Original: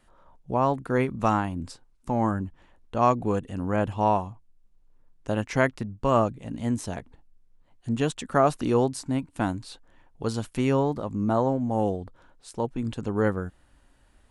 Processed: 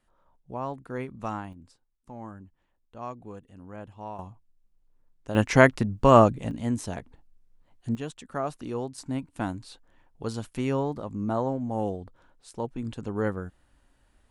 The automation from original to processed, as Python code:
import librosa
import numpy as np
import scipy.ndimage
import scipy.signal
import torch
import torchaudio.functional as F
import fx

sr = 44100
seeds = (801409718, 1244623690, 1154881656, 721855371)

y = fx.gain(x, sr, db=fx.steps((0.0, -10.0), (1.53, -16.5), (4.19, -6.0), (5.35, 6.0), (6.51, -1.0), (7.95, -10.0), (8.98, -4.0)))